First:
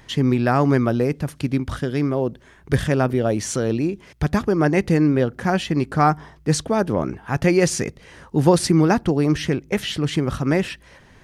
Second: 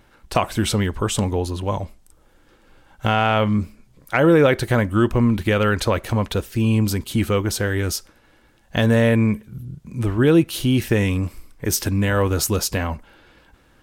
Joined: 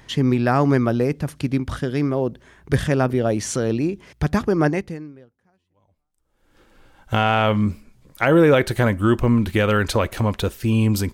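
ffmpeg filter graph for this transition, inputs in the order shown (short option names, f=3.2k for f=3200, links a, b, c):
-filter_complex "[0:a]apad=whole_dur=11.13,atrim=end=11.13,atrim=end=6.59,asetpts=PTS-STARTPTS[a];[1:a]atrim=start=0.59:end=7.05,asetpts=PTS-STARTPTS[b];[a][b]acrossfade=d=1.92:c1=exp:c2=exp"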